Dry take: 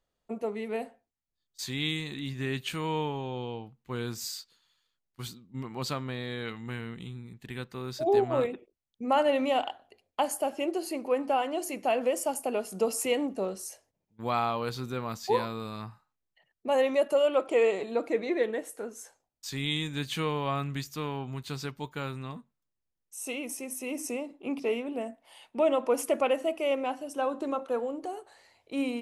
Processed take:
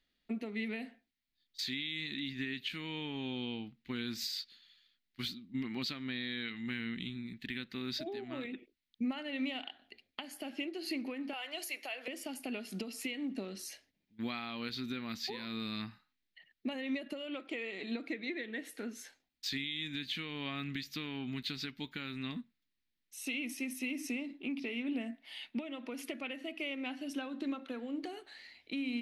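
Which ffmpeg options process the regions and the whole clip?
-filter_complex "[0:a]asettb=1/sr,asplit=3[a][b][c];[a]atrim=end=11.334[d];[b]atrim=start=11.33:end=12.08,asetpts=PTS-STARTPTS,afade=t=in:d=0.004:c=qsin,afade=t=out:st=0.746:d=0.004:c=qsin,highpass=f=470:w=0.5412,highpass=f=470:w=1.3066,highshelf=f=8.2k:g=10.5[e];[c]atrim=start=12.076[f];[d][e]acrossfade=d=0.004:c1=hsin:c2=qsin[g];[g][f]acrossfade=d=0.004:c1=qsin:c2=hsin,asettb=1/sr,asplit=3[h][i][j];[h]atrim=end=16.734[k];[i]atrim=start=16.73:end=17.35,asetpts=PTS-STARTPTS,afade=t=in:d=0.004:c=qsin,afade=t=out:st=0.616:d=0.004:c=qsin,lowshelf=f=350:g=7.5,acompressor=threshold=-26dB:ratio=1.5:attack=3.2:release=140:knee=1:detection=peak[l];[j]atrim=start=17.346[m];[k][l]acrossfade=d=0.004:c1=hsin:c2=qsin[n];[n][m]acrossfade=d=0.004:c1=qsin:c2=hsin,acompressor=threshold=-34dB:ratio=12,equalizer=f=125:t=o:w=1:g=-7,equalizer=f=250:t=o:w=1:g=10,equalizer=f=500:t=o:w=1:g=-8,equalizer=f=1k:t=o:w=1:g=-9,equalizer=f=2k:t=o:w=1:g=10,equalizer=f=4k:t=o:w=1:g=11,equalizer=f=8k:t=o:w=1:g=-10,alimiter=level_in=2.5dB:limit=-24dB:level=0:latency=1:release=303,volume=-2.5dB,volume=-1dB"

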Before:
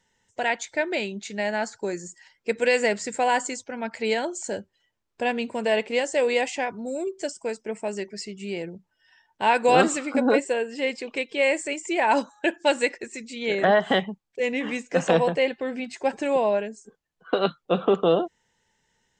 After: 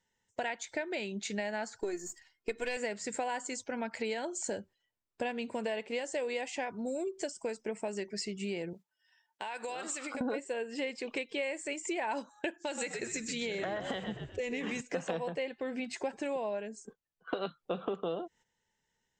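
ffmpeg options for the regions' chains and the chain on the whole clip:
-filter_complex "[0:a]asettb=1/sr,asplit=3[a][b][c];[a]atrim=end=1.794[d];[b]atrim=start=1.79:end=2.77,asetpts=PTS-STARTPTS,afade=t=in:d=0.004:c=qsin,afade=t=out:st=0.976:d=0.004:c=qsin,aeval=exprs='if(lt(val(0),0),0.708*val(0),val(0))':c=same,aecho=1:1:2.8:0.6,atrim=end_sample=43218[e];[c]atrim=start=2.766[f];[d][e]acrossfade=d=0.004:c1=hsin:c2=qsin[g];[g][f]acrossfade=d=0.004:c1=qsin:c2=hsin,asettb=1/sr,asplit=3[h][i][j];[h]atrim=end=8.734[k];[i]atrim=start=8.73:end=10.21,asetpts=PTS-STARTPTS,afade=t=in:d=0.004:c=qsin,afade=t=out:st=1.476:d=0.004:c=qsin,highpass=f=710:p=1,acompressor=threshold=-35dB:ratio=12:attack=3.2:release=140:knee=1:detection=peak,highshelf=f=6.1k:g=6.5[l];[j]atrim=start=10.206[m];[k][l]acrossfade=d=0.004:c1=hsin:c2=qsin[n];[n][m]acrossfade=d=0.004:c1=qsin:c2=hsin,asettb=1/sr,asplit=3[o][p][q];[o]atrim=end=12.584[r];[p]atrim=start=12.58:end=14.81,asetpts=PTS-STARTPTS,afade=t=in:d=0.004:c=qsin,afade=t=out:st=2.226:d=0.004:c=qsin,acompressor=threshold=-25dB:ratio=4:attack=3.2:release=140:knee=1:detection=peak,lowpass=f=6.8k:t=q:w=2.4,asplit=5[s][t][u][v][w];[t]adelay=127,afreqshift=-61,volume=-9dB[x];[u]adelay=254,afreqshift=-122,volume=-17.4dB[y];[v]adelay=381,afreqshift=-183,volume=-25.8dB[z];[w]adelay=508,afreqshift=-244,volume=-34.2dB[aa];[s][x][y][z][aa]amix=inputs=5:normalize=0,atrim=end_sample=98343[ab];[q]atrim=start=14.806[ac];[r][ab]acrossfade=d=0.004:c1=hsin:c2=qsin[ad];[ad][ac]acrossfade=d=0.004:c1=qsin:c2=hsin,agate=range=-11dB:threshold=-48dB:ratio=16:detection=peak,acompressor=threshold=-33dB:ratio=6"

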